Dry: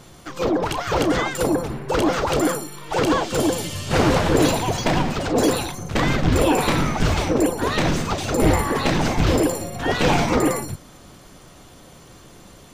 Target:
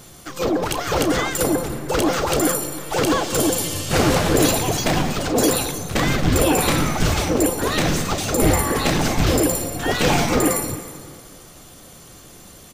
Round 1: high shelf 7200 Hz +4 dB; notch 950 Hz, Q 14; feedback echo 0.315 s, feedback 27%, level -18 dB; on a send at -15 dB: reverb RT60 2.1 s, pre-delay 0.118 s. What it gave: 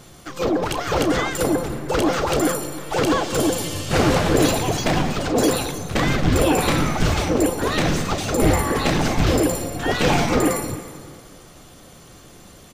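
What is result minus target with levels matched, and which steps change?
8000 Hz band -4.0 dB
change: high shelf 7200 Hz +13 dB

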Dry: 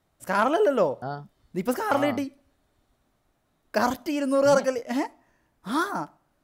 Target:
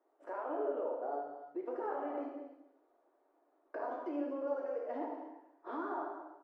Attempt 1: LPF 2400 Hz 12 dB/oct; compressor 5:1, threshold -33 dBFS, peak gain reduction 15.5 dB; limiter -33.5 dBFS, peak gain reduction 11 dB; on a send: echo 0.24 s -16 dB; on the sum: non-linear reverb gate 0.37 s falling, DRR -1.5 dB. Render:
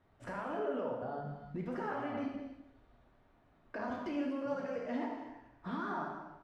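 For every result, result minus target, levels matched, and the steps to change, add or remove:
2000 Hz band +6.0 dB; 250 Hz band +3.5 dB
change: LPF 870 Hz 12 dB/oct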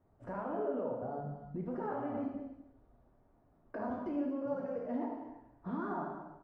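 250 Hz band +4.0 dB
add after compressor: elliptic high-pass 310 Hz, stop band 40 dB

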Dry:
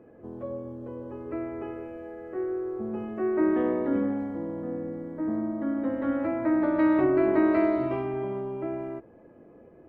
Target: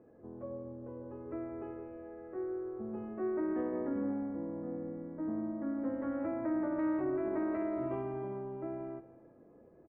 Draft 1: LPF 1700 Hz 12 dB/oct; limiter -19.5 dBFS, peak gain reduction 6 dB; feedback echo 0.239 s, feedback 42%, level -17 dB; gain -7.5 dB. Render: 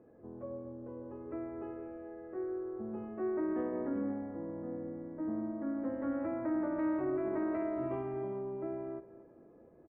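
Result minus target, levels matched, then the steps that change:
echo 70 ms late
change: feedback echo 0.169 s, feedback 42%, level -17 dB

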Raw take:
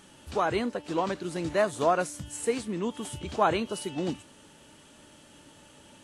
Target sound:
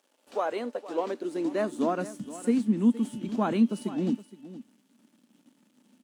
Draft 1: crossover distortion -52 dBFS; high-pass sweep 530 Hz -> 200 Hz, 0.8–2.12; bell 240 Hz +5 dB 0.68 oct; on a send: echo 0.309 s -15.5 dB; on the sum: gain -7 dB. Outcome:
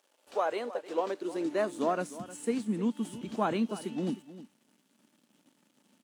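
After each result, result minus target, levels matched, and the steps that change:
echo 0.159 s early; 250 Hz band -2.5 dB
change: echo 0.468 s -15.5 dB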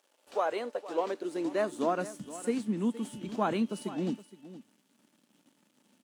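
250 Hz band -2.5 dB
change: bell 240 Hz +14 dB 0.68 oct

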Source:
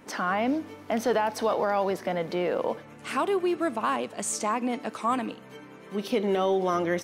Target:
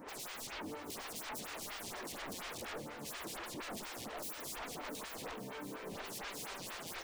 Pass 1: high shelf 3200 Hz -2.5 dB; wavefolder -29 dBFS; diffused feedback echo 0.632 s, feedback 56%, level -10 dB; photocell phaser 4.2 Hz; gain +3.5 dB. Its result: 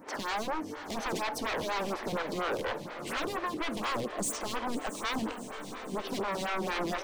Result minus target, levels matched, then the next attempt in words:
wavefolder: distortion -16 dB
high shelf 3200 Hz -2.5 dB; wavefolder -40.5 dBFS; diffused feedback echo 0.632 s, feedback 56%, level -10 dB; photocell phaser 4.2 Hz; gain +3.5 dB

